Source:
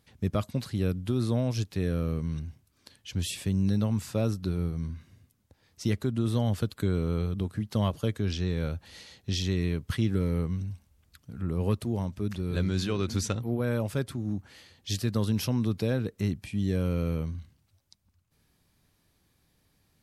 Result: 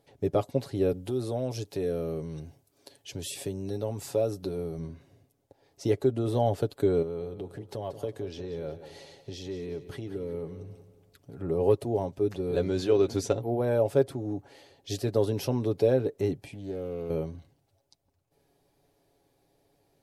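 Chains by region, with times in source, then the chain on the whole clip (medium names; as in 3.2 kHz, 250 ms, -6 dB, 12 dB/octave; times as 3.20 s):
0.92–4.79 s: high-pass 42 Hz + treble shelf 4.5 kHz +7.5 dB + compression 2:1, threshold -31 dBFS
7.02–11.38 s: compression 2.5:1, threshold -37 dBFS + feedback delay 182 ms, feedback 42%, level -12.5 dB
16.47–17.10 s: compression 2.5:1, threshold -36 dBFS + loudspeaker Doppler distortion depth 0.19 ms
whole clip: high-order bell 520 Hz +13.5 dB; comb 7.2 ms, depth 51%; trim -5 dB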